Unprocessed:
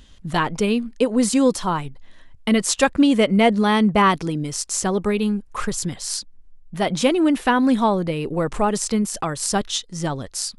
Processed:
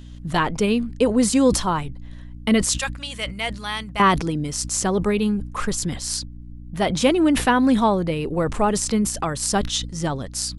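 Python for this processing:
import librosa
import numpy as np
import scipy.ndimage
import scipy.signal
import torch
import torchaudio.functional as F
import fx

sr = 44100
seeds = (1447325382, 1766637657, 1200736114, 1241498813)

y = fx.tone_stack(x, sr, knobs='10-0-10', at=(2.69, 4.0))
y = fx.add_hum(y, sr, base_hz=60, snr_db=17)
y = fx.sustainer(y, sr, db_per_s=99.0)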